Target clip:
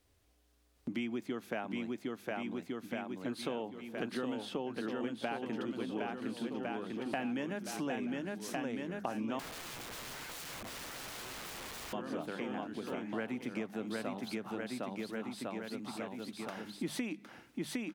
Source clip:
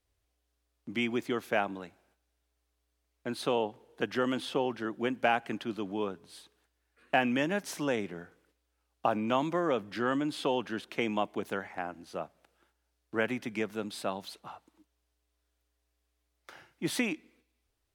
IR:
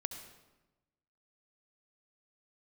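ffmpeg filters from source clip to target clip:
-filter_complex "[0:a]equalizer=frequency=220:width_type=o:width=1.2:gain=6.5,bandreject=frequency=50:width_type=h:width=6,bandreject=frequency=100:width_type=h:width=6,bandreject=frequency=150:width_type=h:width=6,bandreject=frequency=200:width_type=h:width=6,aecho=1:1:760|1406|1955|2422|2819:0.631|0.398|0.251|0.158|0.1,acompressor=threshold=-46dB:ratio=4,asettb=1/sr,asplit=3[link_01][link_02][link_03];[link_01]atrim=end=9.394[link_04];[link_02]atrim=start=9.39:end=11.93,asetpts=PTS-STARTPTS,afade=type=in:duration=0.004:curve=qsin,afade=type=out:start_time=2.536:duration=0.004:curve=qsin,aeval=exprs='(mod(251*val(0)+1,2)-1)/251':channel_layout=same[link_05];[link_03]atrim=start=11.926[link_06];[link_04][link_05]acrossfade=duration=0.004:curve1=hsin:curve2=qsin[link_07];[link_07][link_06]acrossfade=duration=0.004:curve1=qsin:curve2=hsin,volume=7.5dB"

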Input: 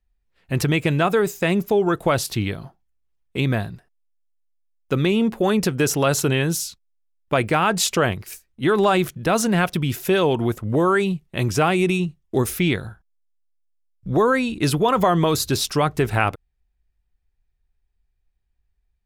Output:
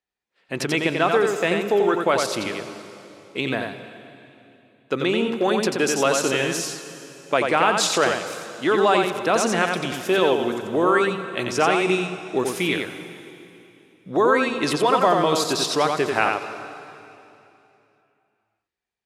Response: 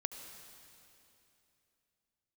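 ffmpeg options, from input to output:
-filter_complex "[0:a]highpass=310,lowpass=7900,asplit=2[link_01][link_02];[1:a]atrim=start_sample=2205,adelay=89[link_03];[link_02][link_03]afir=irnorm=-1:irlink=0,volume=-3dB[link_04];[link_01][link_04]amix=inputs=2:normalize=0"

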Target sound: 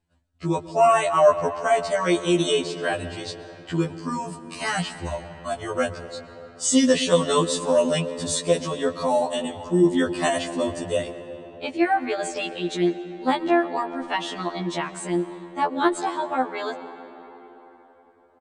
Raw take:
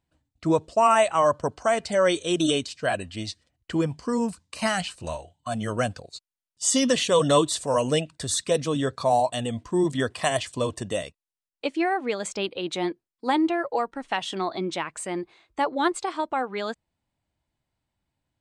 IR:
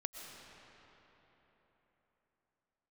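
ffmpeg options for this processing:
-filter_complex "[0:a]aresample=22050,aresample=44100,asplit=2[link_01][link_02];[1:a]atrim=start_sample=2205,highshelf=frequency=2100:gain=-6.5[link_03];[link_02][link_03]afir=irnorm=-1:irlink=0,volume=-1dB[link_04];[link_01][link_04]amix=inputs=2:normalize=0,afftfilt=real='re*2*eq(mod(b,4),0)':imag='im*2*eq(mod(b,4),0)':win_size=2048:overlap=0.75"

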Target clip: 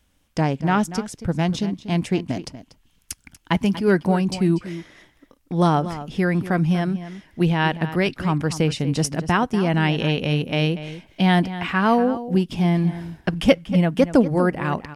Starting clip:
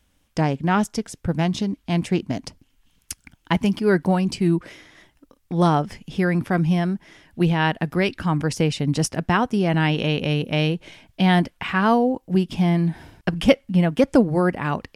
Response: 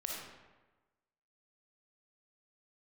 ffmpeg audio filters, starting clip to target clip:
-filter_complex "[0:a]asplit=2[link_01][link_02];[link_02]adelay=239.1,volume=-13dB,highshelf=frequency=4000:gain=-5.38[link_03];[link_01][link_03]amix=inputs=2:normalize=0"

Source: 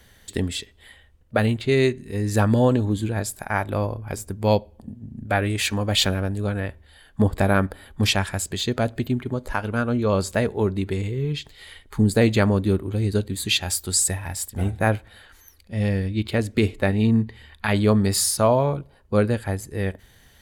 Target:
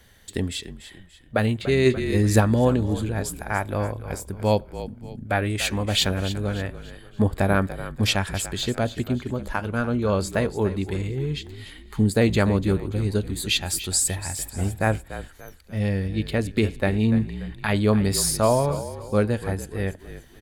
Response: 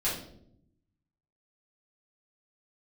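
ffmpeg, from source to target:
-filter_complex "[0:a]asplit=5[link_01][link_02][link_03][link_04][link_05];[link_02]adelay=290,afreqshift=-43,volume=-13dB[link_06];[link_03]adelay=580,afreqshift=-86,volume=-21.2dB[link_07];[link_04]adelay=870,afreqshift=-129,volume=-29.4dB[link_08];[link_05]adelay=1160,afreqshift=-172,volume=-37.5dB[link_09];[link_01][link_06][link_07][link_08][link_09]amix=inputs=5:normalize=0,asplit=3[link_10][link_11][link_12];[link_10]afade=type=out:start_time=1.85:duration=0.02[link_13];[link_11]acontrast=54,afade=type=in:start_time=1.85:duration=0.02,afade=type=out:start_time=2.39:duration=0.02[link_14];[link_12]afade=type=in:start_time=2.39:duration=0.02[link_15];[link_13][link_14][link_15]amix=inputs=3:normalize=0,volume=-1.5dB"

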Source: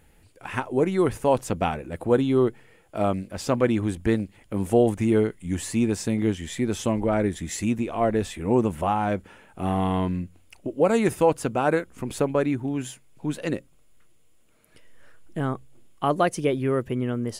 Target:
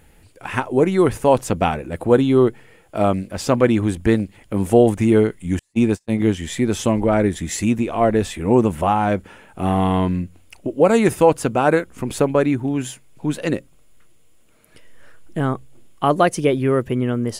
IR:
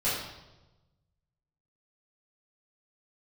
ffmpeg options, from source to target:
-filter_complex "[0:a]asettb=1/sr,asplit=3[link_01][link_02][link_03];[link_01]atrim=end=5.594[link_04];[link_02]atrim=start=5.59:end=6.2,asetpts=PTS-STARTPTS,afade=type=in:duration=0.004:curve=qsin,afade=type=out:start_time=0.606:duration=0.004:curve=qsin,agate=range=-41dB:threshold=-23dB:ratio=16:detection=peak[link_05];[link_03]atrim=start=6.196[link_06];[link_04][link_05]acrossfade=duration=0.004:curve1=hsin:curve2=qsin[link_07];[link_07][link_06]acrossfade=duration=0.004:curve1=qsin:curve2=hsin,volume=6dB"

